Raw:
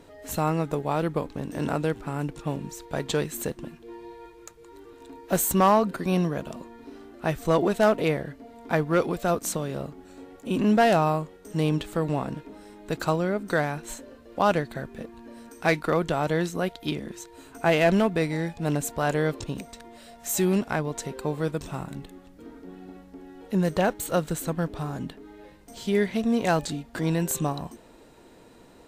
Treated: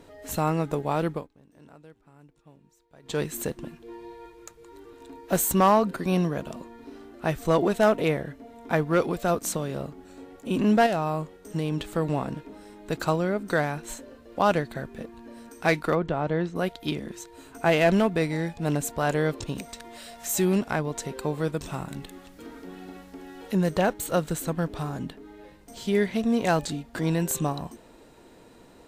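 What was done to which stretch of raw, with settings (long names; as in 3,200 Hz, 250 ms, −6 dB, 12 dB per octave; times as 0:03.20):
0:01.08–0:03.22: duck −24 dB, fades 0.20 s
0:07.78–0:08.82: notch filter 4,600 Hz
0:10.86–0:11.79: downward compressor, threshold −22 dBFS
0:15.95–0:16.56: head-to-tape spacing loss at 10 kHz 26 dB
0:19.09–0:24.89: one half of a high-frequency compander encoder only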